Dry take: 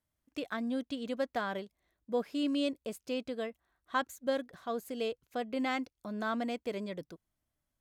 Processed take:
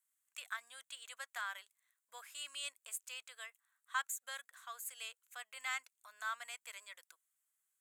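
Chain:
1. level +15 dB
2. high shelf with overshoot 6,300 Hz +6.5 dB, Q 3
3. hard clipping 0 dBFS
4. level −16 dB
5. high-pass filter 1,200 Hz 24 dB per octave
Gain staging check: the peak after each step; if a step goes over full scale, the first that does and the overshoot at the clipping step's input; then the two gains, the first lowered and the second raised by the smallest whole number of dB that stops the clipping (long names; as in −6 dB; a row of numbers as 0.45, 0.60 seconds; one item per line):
−3.5, −3.0, −3.0, −19.0, −24.0 dBFS
no step passes full scale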